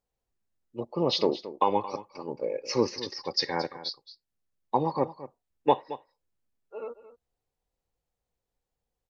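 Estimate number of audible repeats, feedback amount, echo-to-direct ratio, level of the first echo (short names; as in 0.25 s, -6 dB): 1, no steady repeat, -15.0 dB, -15.0 dB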